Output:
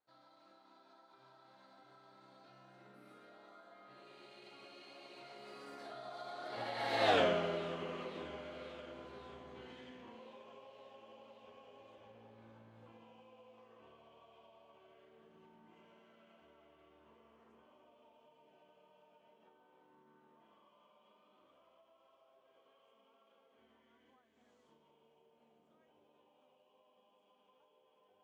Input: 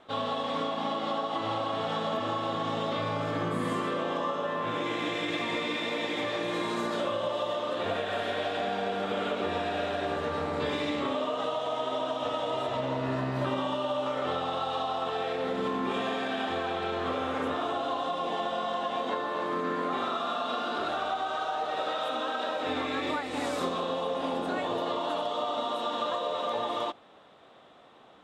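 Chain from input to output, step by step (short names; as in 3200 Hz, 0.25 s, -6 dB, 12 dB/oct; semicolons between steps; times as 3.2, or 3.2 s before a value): Doppler pass-by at 7.14, 56 m/s, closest 5.9 m; thin delay 0.538 s, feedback 70%, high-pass 2200 Hz, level -18.5 dB; gain +3.5 dB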